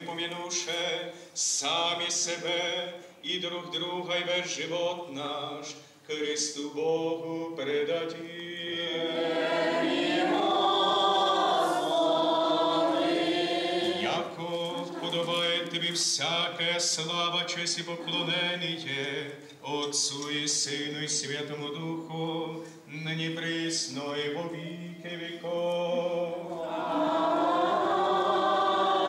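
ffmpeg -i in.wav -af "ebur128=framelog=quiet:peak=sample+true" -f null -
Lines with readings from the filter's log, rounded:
Integrated loudness:
  I:         -28.7 LUFS
  Threshold: -38.9 LUFS
Loudness range:
  LRA:         6.8 LU
  Threshold: -49.0 LUFS
  LRA low:   -32.4 LUFS
  LRA high:  -25.5 LUFS
Sample peak:
  Peak:      -13.9 dBFS
True peak:
  Peak:      -13.9 dBFS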